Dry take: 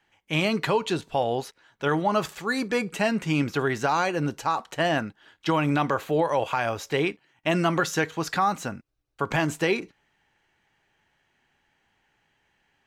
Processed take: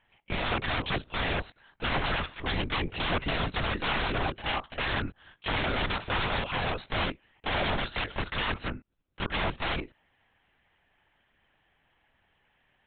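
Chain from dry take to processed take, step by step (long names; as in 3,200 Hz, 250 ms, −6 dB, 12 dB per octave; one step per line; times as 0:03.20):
wrap-around overflow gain 22 dB
linear-prediction vocoder at 8 kHz whisper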